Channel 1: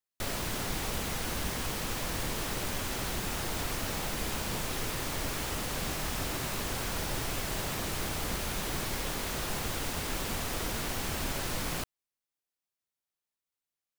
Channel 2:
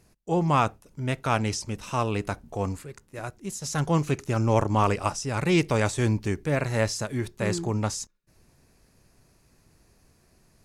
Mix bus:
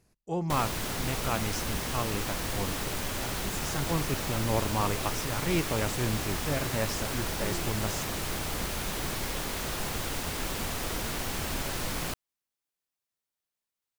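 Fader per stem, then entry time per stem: +1.0 dB, -7.0 dB; 0.30 s, 0.00 s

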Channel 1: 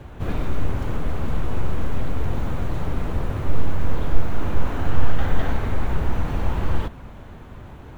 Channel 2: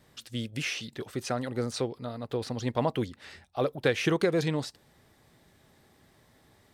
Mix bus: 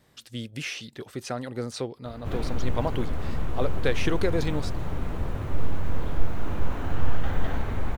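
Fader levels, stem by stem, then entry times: -5.0 dB, -1.0 dB; 2.05 s, 0.00 s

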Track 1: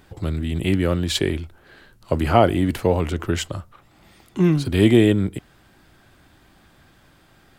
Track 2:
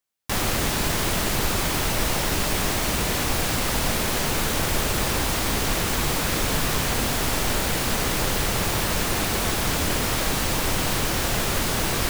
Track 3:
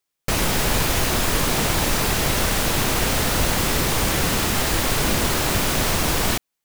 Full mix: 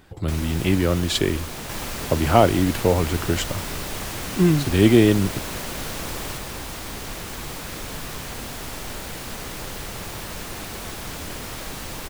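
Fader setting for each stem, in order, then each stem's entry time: 0.0 dB, -9.5 dB, -13.0 dB; 0.00 s, 1.40 s, 0.00 s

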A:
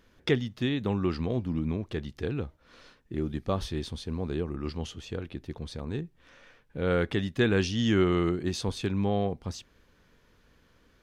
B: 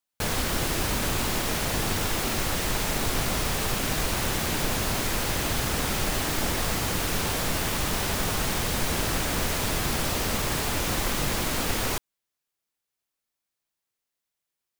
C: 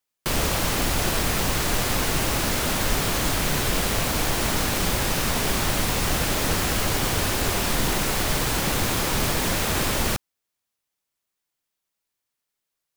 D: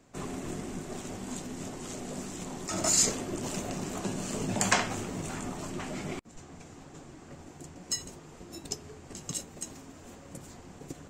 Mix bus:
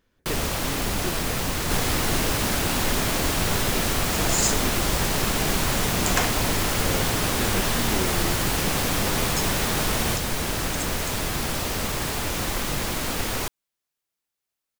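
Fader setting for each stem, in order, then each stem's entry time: -7.5 dB, 0.0 dB, -3.0 dB, 0.0 dB; 0.00 s, 1.50 s, 0.00 s, 1.45 s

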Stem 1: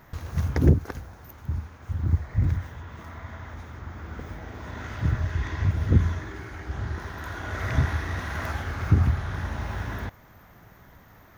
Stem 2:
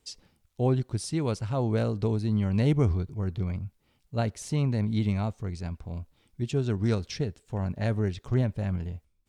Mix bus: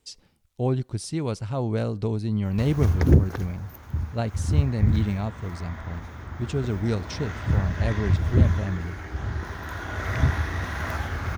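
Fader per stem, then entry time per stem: +1.5 dB, +0.5 dB; 2.45 s, 0.00 s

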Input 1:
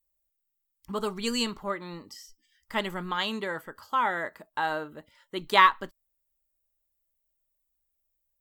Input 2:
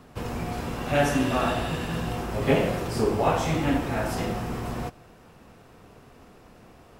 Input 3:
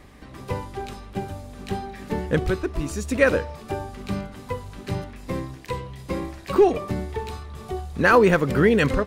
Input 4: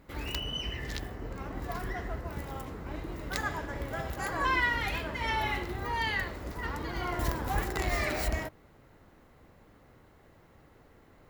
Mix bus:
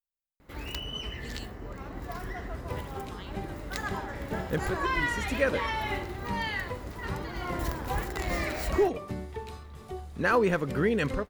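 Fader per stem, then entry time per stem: -18.5 dB, mute, -8.5 dB, -1.5 dB; 0.00 s, mute, 2.20 s, 0.40 s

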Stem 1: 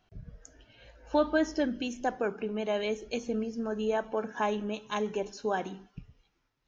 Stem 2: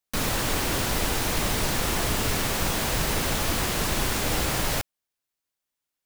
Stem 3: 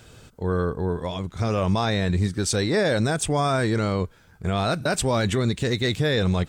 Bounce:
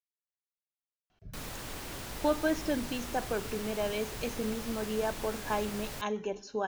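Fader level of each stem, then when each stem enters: -2.5 dB, -15.5 dB, mute; 1.10 s, 1.20 s, mute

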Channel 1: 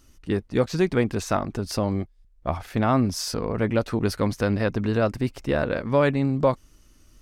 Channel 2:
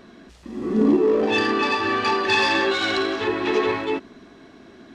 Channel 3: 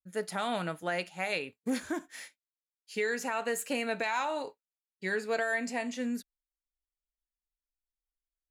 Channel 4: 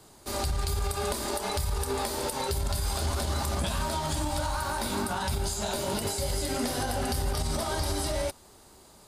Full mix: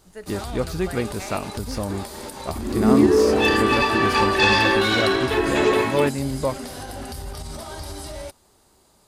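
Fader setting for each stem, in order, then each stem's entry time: -3.5 dB, +2.0 dB, -4.5 dB, -4.5 dB; 0.00 s, 2.10 s, 0.00 s, 0.00 s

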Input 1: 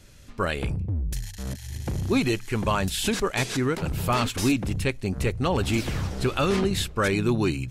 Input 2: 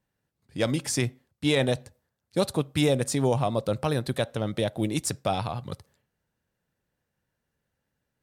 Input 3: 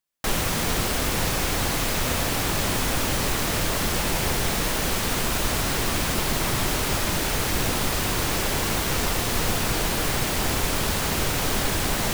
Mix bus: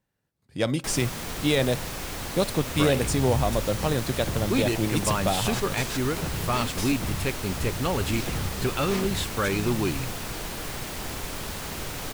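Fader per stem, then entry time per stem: -2.5 dB, +0.5 dB, -9.5 dB; 2.40 s, 0.00 s, 0.60 s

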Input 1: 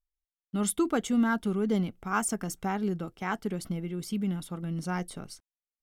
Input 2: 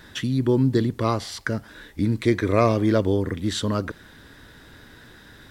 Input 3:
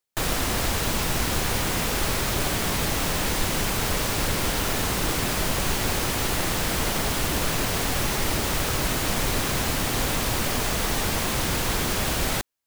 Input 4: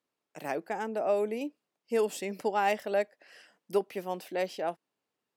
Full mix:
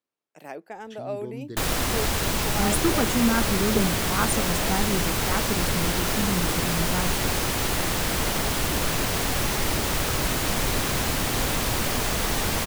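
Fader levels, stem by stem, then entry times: +2.5 dB, -18.0 dB, 0.0 dB, -4.5 dB; 2.05 s, 0.75 s, 1.40 s, 0.00 s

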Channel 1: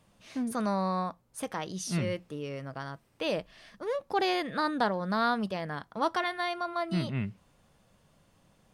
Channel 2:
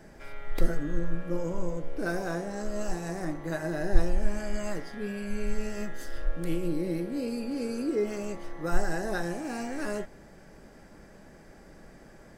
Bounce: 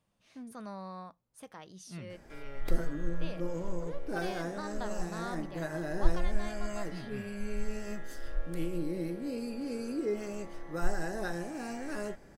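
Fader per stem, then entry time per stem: -13.5 dB, -4.5 dB; 0.00 s, 2.10 s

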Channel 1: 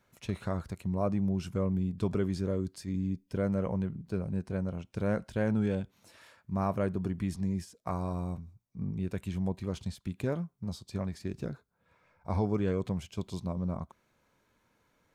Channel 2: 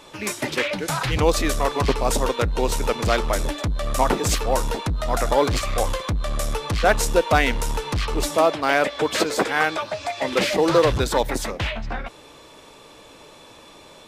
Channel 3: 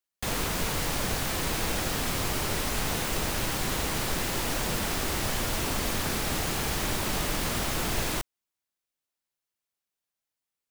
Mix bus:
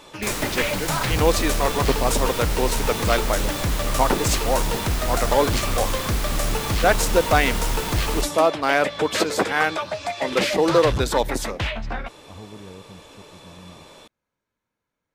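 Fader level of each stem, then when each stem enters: -11.5 dB, 0.0 dB, +0.5 dB; 0.00 s, 0.00 s, 0.00 s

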